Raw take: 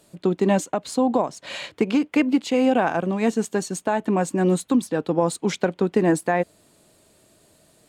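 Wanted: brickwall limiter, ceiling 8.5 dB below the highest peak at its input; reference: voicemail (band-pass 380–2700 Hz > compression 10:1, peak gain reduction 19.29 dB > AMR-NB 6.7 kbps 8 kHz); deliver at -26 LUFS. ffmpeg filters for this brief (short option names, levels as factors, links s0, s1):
-af "alimiter=limit=0.188:level=0:latency=1,highpass=380,lowpass=2700,acompressor=threshold=0.00891:ratio=10,volume=10.6" -ar 8000 -c:a libopencore_amrnb -b:a 6700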